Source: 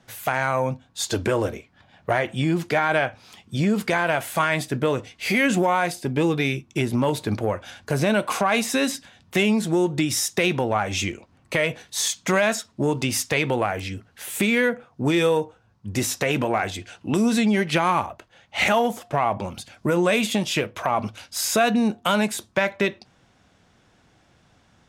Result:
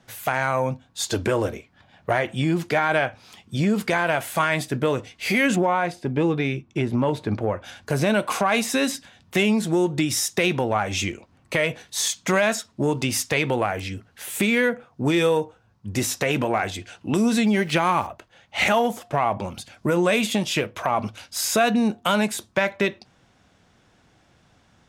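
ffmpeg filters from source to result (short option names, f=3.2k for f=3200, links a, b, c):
-filter_complex "[0:a]asettb=1/sr,asplit=3[a][b][c];[a]atrim=end=5.564[d];[b]atrim=start=5.56:end=7.64,asetpts=PTS-STARTPTS,afade=t=in:d=0.004:c=qsin,afade=t=out:st=2.076:d=0.004:c=qsin,aemphasis=mode=reproduction:type=75kf[e];[c]atrim=start=7.636[f];[d][e]acrossfade=d=0.004:c1=hsin:c2=qsin[g];[g][f]acrossfade=d=0.004:c1=qsin:c2=hsin,asettb=1/sr,asplit=3[h][i][j];[h]atrim=end=17.414[k];[i]atrim=start=17.41:end=18.07,asetpts=PTS-STARTPTS,afade=t=in:d=0.004:c=qsin,afade=t=out:st=0.656:d=0.004:c=qsin,aeval=exprs='val(0)*gte(abs(val(0)),0.00708)':c=same[l];[j]atrim=start=18.066[m];[k][l]acrossfade=d=0.004:c1=hsin:c2=qsin[n];[n][m]acrossfade=d=0.004:c1=qsin:c2=hsin"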